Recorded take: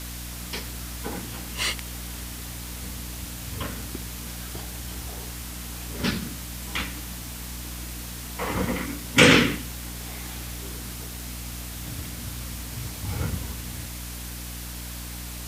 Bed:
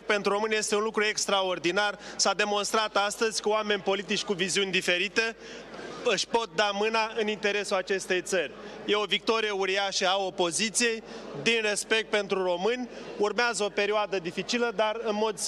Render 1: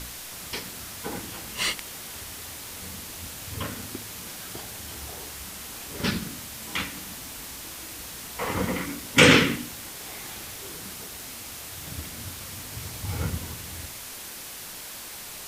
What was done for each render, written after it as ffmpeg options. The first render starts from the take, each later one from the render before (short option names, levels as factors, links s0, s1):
-af "bandreject=f=60:t=h:w=4,bandreject=f=120:t=h:w=4,bandreject=f=180:t=h:w=4,bandreject=f=240:t=h:w=4,bandreject=f=300:t=h:w=4"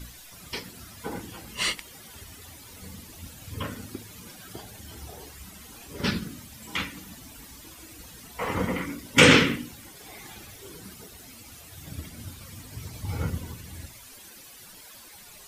-af "afftdn=nr=13:nf=-40"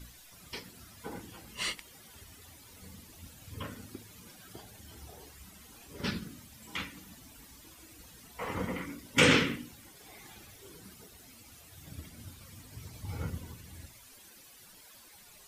-af "volume=0.422"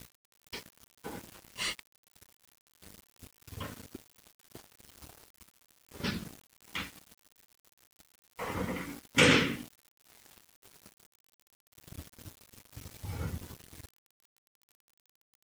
-af "aeval=exprs='val(0)*gte(abs(val(0)),0.00596)':c=same"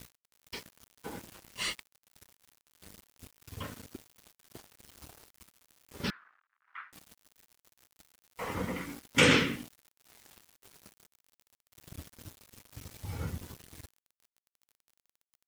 -filter_complex "[0:a]asettb=1/sr,asplit=3[s0][s1][s2];[s0]atrim=end=6.104[s3];[s1]atrim=start=6.1:end=6.93,asetpts=PTS-STARTPTS,afade=t=in:d=0.004:c=qsin,afade=t=out:st=0.826:d=0.004:c=qsin,asuperpass=centerf=1400:order=4:qfactor=2.1[s4];[s2]atrim=start=6.926[s5];[s3][s4]acrossfade=d=0.004:c1=hsin:c2=qsin[s6];[s6][s5]acrossfade=d=0.004:c1=qsin:c2=hsin"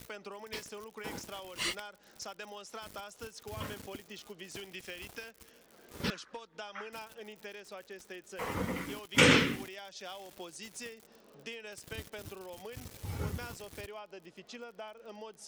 -filter_complex "[1:a]volume=0.106[s0];[0:a][s0]amix=inputs=2:normalize=0"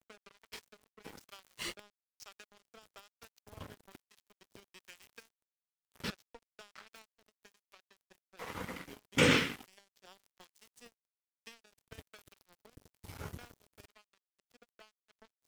-filter_complex "[0:a]aeval=exprs='sgn(val(0))*max(abs(val(0))-0.00944,0)':c=same,acrossover=split=830[s0][s1];[s0]aeval=exprs='val(0)*(1-0.5/2+0.5/2*cos(2*PI*1.1*n/s))':c=same[s2];[s1]aeval=exprs='val(0)*(1-0.5/2-0.5/2*cos(2*PI*1.1*n/s))':c=same[s3];[s2][s3]amix=inputs=2:normalize=0"